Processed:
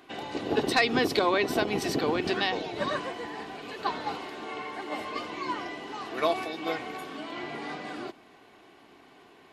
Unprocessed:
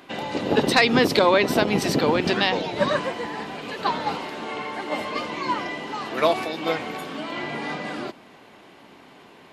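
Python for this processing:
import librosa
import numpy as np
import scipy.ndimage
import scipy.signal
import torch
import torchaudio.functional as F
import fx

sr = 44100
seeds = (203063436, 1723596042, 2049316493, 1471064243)

y = x + 0.38 * np.pad(x, (int(2.7 * sr / 1000.0), 0))[:len(x)]
y = F.gain(torch.from_numpy(y), -7.0).numpy()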